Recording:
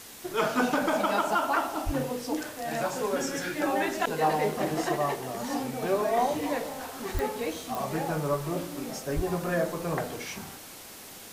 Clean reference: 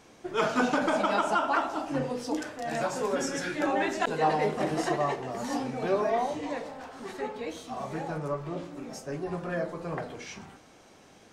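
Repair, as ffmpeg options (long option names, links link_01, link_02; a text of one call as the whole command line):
ffmpeg -i in.wav -filter_complex "[0:a]adeclick=threshold=4,asplit=3[link_01][link_02][link_03];[link_01]afade=type=out:start_time=1.85:duration=0.02[link_04];[link_02]highpass=frequency=140:width=0.5412,highpass=frequency=140:width=1.3066,afade=type=in:start_time=1.85:duration=0.02,afade=type=out:start_time=1.97:duration=0.02[link_05];[link_03]afade=type=in:start_time=1.97:duration=0.02[link_06];[link_04][link_05][link_06]amix=inputs=3:normalize=0,asplit=3[link_07][link_08][link_09];[link_07]afade=type=out:start_time=7.13:duration=0.02[link_10];[link_08]highpass=frequency=140:width=0.5412,highpass=frequency=140:width=1.3066,afade=type=in:start_time=7.13:duration=0.02,afade=type=out:start_time=7.25:duration=0.02[link_11];[link_09]afade=type=in:start_time=7.25:duration=0.02[link_12];[link_10][link_11][link_12]amix=inputs=3:normalize=0,asplit=3[link_13][link_14][link_15];[link_13]afade=type=out:start_time=9.15:duration=0.02[link_16];[link_14]highpass=frequency=140:width=0.5412,highpass=frequency=140:width=1.3066,afade=type=in:start_time=9.15:duration=0.02,afade=type=out:start_time=9.27:duration=0.02[link_17];[link_15]afade=type=in:start_time=9.27:duration=0.02[link_18];[link_16][link_17][link_18]amix=inputs=3:normalize=0,afwtdn=0.0056,asetnsamples=nb_out_samples=441:pad=0,asendcmd='6.17 volume volume -4dB',volume=0dB" out.wav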